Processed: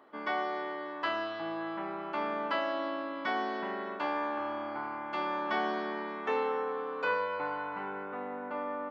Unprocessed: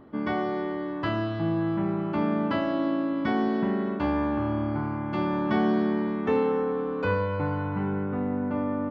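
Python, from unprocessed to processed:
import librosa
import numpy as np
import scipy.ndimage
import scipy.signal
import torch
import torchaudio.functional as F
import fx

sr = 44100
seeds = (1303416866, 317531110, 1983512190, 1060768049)

y = scipy.signal.sosfilt(scipy.signal.butter(2, 660.0, 'highpass', fs=sr, output='sos'), x)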